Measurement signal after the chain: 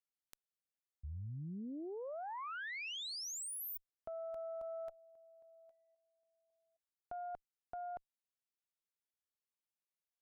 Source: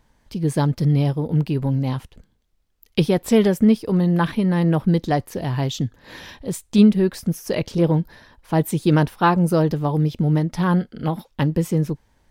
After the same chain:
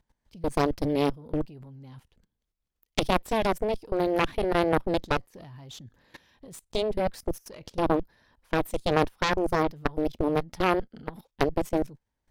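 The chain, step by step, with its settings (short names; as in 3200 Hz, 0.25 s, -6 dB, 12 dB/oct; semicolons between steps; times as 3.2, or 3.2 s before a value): level quantiser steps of 19 dB; added harmonics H 3 -7 dB, 4 -19 dB, 8 -30 dB, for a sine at -8 dBFS; gain +3.5 dB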